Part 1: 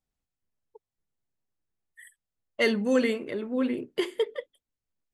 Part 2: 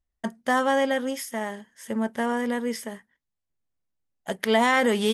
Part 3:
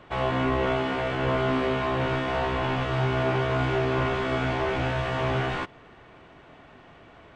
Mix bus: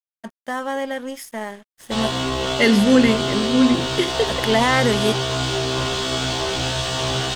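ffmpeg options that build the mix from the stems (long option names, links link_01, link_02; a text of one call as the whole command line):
ffmpeg -i stem1.wav -i stem2.wav -i stem3.wav -filter_complex "[0:a]asubboost=boost=5.5:cutoff=200,volume=1.5dB[link_01];[1:a]acompressor=mode=upward:threshold=-43dB:ratio=2.5,volume=-4dB,asplit=3[link_02][link_03][link_04];[link_02]atrim=end=2.18,asetpts=PTS-STARTPTS,afade=type=out:start_time=2.176:duration=0.004:curve=hsin[link_05];[link_03]atrim=start=2.18:end=2.69,asetpts=PTS-STARTPTS,volume=0[link_06];[link_04]atrim=start=2.69,asetpts=PTS-STARTPTS,afade=type=in:duration=0.004:curve=hsin[link_07];[link_05][link_06][link_07]concat=n=3:v=0:a=1[link_08];[2:a]aexciter=amount=12.4:drive=3.1:freq=3300,adelay=1800,volume=-5.5dB[link_09];[link_01][link_08][link_09]amix=inputs=3:normalize=0,dynaudnorm=framelen=490:gausssize=5:maxgain=8dB,aeval=exprs='sgn(val(0))*max(abs(val(0))-0.00631,0)':channel_layout=same" out.wav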